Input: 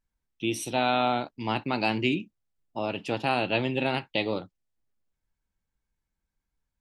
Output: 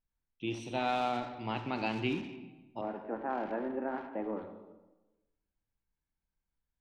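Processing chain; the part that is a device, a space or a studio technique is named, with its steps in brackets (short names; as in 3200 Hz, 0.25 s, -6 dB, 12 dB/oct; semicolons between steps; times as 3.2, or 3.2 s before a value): 2.81–4.42 Chebyshev band-pass 200–1700 Hz, order 4; air absorption 150 m; saturated reverb return (on a send at -3 dB: reverb RT60 1.0 s, pre-delay 28 ms + soft clip -29.5 dBFS, distortion -7 dB); on the sum: gain -7 dB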